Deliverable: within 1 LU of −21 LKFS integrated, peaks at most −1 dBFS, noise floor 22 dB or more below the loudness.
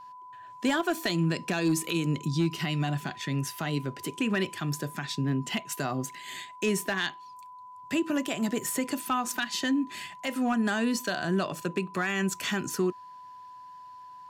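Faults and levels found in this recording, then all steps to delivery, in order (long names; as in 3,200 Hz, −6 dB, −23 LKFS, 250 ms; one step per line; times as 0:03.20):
share of clipped samples 0.2%; peaks flattened at −19.0 dBFS; interfering tone 1,000 Hz; level of the tone −44 dBFS; integrated loudness −30.0 LKFS; sample peak −19.0 dBFS; target loudness −21.0 LKFS
→ clipped peaks rebuilt −19 dBFS
notch filter 1,000 Hz, Q 30
level +9 dB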